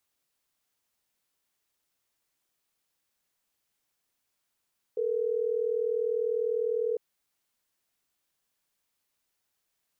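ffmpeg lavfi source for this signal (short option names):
-f lavfi -i "aevalsrc='0.0376*(sin(2*PI*440*t)+sin(2*PI*480*t))*clip(min(mod(t,6),2-mod(t,6))/0.005,0,1)':d=3.12:s=44100"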